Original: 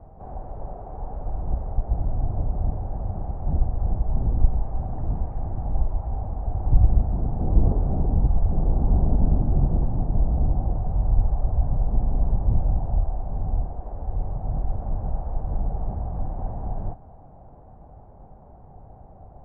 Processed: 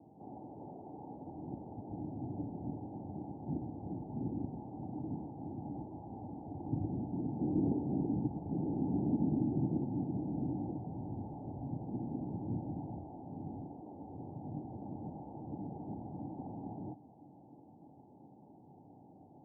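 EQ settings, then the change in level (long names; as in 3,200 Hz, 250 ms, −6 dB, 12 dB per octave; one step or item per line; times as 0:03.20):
formant resonators in series u
high-pass filter 120 Hz 24 dB per octave
+4.5 dB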